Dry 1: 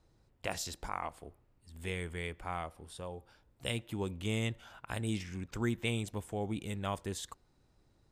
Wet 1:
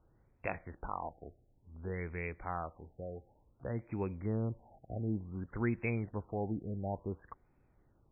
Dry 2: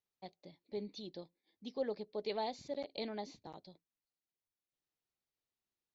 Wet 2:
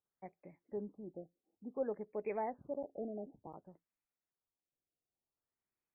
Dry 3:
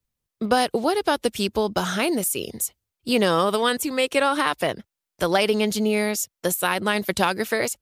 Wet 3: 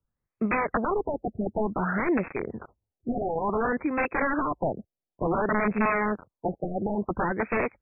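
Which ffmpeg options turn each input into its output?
-af "aeval=exprs='(mod(7.08*val(0)+1,2)-1)/7.08':c=same,afftfilt=real='re*lt(b*sr/1024,770*pow(2700/770,0.5+0.5*sin(2*PI*0.56*pts/sr)))':imag='im*lt(b*sr/1024,770*pow(2700/770,0.5+0.5*sin(2*PI*0.56*pts/sr)))':win_size=1024:overlap=0.75"

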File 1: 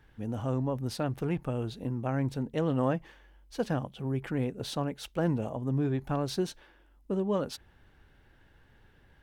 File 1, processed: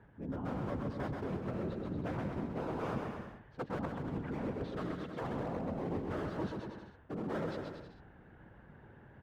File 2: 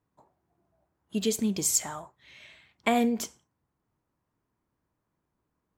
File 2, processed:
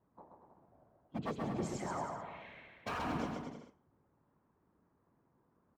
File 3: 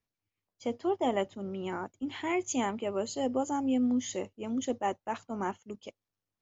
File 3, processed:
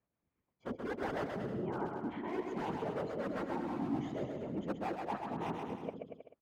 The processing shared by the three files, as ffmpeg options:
-filter_complex "[0:a]asplit=2[a][b];[b]asoftclip=type=tanh:threshold=-25.5dB,volume=-11.5dB[c];[a][c]amix=inputs=2:normalize=0,lowpass=1.3k,aeval=exprs='0.0596*(abs(mod(val(0)/0.0596+3,4)-2)-1)':c=same,afftfilt=real='hypot(re,im)*cos(2*PI*random(0))':imag='hypot(re,im)*sin(2*PI*random(1))':win_size=512:overlap=0.75,highpass=f=95:p=1,areverse,acompressor=threshold=-47dB:ratio=5,areverse,aecho=1:1:130|234|317.2|383.8|437:0.631|0.398|0.251|0.158|0.1,volume=9.5dB"

